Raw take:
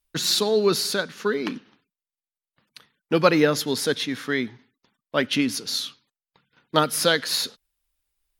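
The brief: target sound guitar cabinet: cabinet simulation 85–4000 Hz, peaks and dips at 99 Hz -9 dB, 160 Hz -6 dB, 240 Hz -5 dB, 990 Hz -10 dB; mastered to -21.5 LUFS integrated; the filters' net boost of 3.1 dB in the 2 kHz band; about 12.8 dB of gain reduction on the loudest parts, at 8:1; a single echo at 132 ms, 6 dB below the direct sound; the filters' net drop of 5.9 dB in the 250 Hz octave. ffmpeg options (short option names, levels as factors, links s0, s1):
-af "equalizer=f=250:t=o:g=-5,equalizer=f=2000:t=o:g=5,acompressor=threshold=0.0501:ratio=8,highpass=85,equalizer=f=99:t=q:w=4:g=-9,equalizer=f=160:t=q:w=4:g=-6,equalizer=f=240:t=q:w=4:g=-5,equalizer=f=990:t=q:w=4:g=-10,lowpass=f=4000:w=0.5412,lowpass=f=4000:w=1.3066,aecho=1:1:132:0.501,volume=3.35"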